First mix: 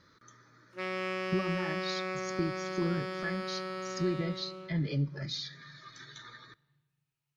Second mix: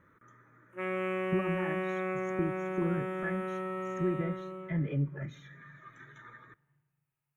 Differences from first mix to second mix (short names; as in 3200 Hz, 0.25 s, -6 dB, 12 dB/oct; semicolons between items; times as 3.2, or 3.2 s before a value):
background: send +9.5 dB; master: add Butterworth band-stop 4700 Hz, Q 0.71